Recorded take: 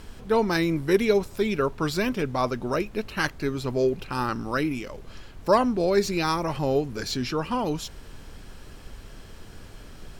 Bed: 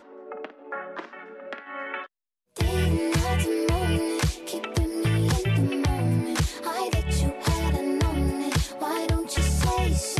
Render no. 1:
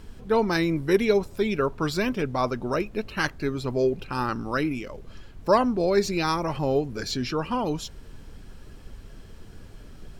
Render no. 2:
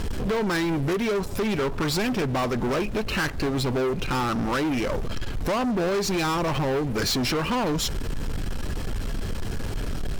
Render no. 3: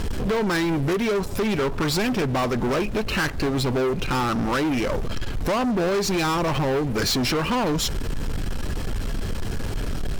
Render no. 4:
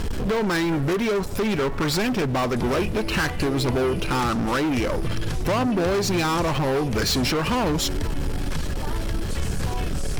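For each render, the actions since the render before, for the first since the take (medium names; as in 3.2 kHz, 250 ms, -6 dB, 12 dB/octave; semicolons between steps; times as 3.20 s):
noise reduction 6 dB, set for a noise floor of -45 dBFS
compression, threshold -32 dBFS, peak gain reduction 16.5 dB; waveshaping leveller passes 5
trim +2 dB
add bed -8 dB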